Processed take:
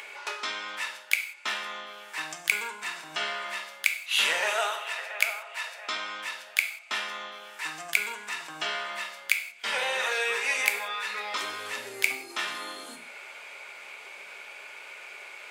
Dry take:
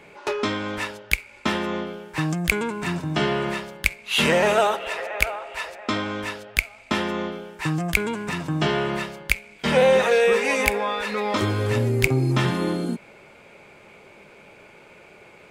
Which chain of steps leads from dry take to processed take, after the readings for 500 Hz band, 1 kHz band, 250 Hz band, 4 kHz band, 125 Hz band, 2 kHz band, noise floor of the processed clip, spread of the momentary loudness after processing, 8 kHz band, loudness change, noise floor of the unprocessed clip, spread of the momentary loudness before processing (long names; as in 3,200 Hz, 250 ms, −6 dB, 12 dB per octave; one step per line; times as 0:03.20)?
−16.5 dB, −7.5 dB, −26.0 dB, −2.0 dB, below −35 dB, −2.5 dB, −47 dBFS, 16 LU, −1.0 dB, −6.0 dB, −49 dBFS, 11 LU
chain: Bessel high-pass filter 1,400 Hz, order 2
upward compression, threshold −32 dBFS
reverb whose tail is shaped and stops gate 210 ms falling, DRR 4.5 dB
level −2.5 dB